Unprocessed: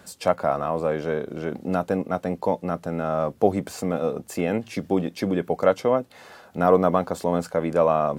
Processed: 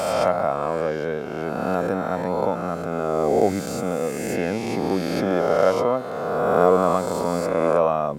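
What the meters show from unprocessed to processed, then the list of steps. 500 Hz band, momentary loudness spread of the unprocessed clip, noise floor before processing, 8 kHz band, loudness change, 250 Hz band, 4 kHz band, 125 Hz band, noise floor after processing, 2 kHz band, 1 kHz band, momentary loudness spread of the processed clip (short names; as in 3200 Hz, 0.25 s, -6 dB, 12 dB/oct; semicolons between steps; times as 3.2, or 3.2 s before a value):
+2.5 dB, 8 LU, -52 dBFS, +5.0 dB, +2.0 dB, +0.5 dB, +4.5 dB, 0.0 dB, -29 dBFS, +4.0 dB, +2.5 dB, 7 LU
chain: spectral swells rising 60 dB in 2.20 s; gain -2.5 dB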